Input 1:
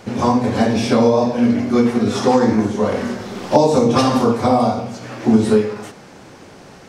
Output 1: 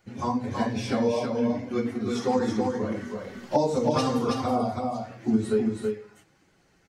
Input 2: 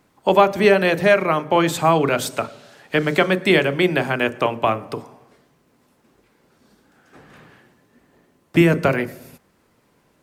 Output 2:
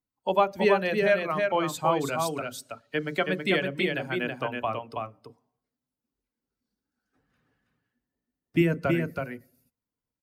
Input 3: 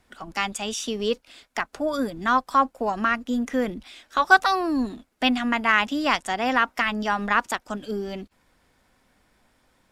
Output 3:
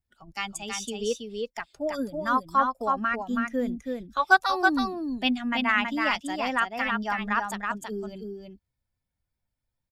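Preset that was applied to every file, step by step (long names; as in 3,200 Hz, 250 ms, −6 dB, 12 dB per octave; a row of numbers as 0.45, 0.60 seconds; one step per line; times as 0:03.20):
spectral dynamics exaggerated over time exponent 1.5
on a send: single-tap delay 325 ms −4 dB
on the sum: loudness normalisation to −27 LKFS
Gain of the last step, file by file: −8.5, −7.0, −2.0 decibels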